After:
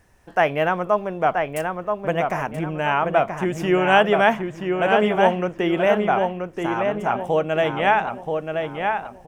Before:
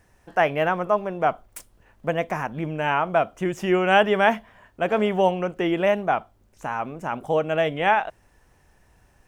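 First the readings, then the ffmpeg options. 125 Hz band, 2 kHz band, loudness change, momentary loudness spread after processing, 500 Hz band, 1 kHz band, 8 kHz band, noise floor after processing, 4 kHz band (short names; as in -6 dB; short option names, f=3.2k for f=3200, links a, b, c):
+3.0 dB, +2.5 dB, +2.0 dB, 9 LU, +3.0 dB, +3.0 dB, n/a, -45 dBFS, +2.5 dB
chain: -filter_complex "[0:a]asplit=2[a][b];[b]adelay=979,lowpass=f=3.2k:p=1,volume=-4.5dB,asplit=2[c][d];[d]adelay=979,lowpass=f=3.2k:p=1,volume=0.37,asplit=2[e][f];[f]adelay=979,lowpass=f=3.2k:p=1,volume=0.37,asplit=2[g][h];[h]adelay=979,lowpass=f=3.2k:p=1,volume=0.37,asplit=2[i][j];[j]adelay=979,lowpass=f=3.2k:p=1,volume=0.37[k];[a][c][e][g][i][k]amix=inputs=6:normalize=0,volume=1.5dB"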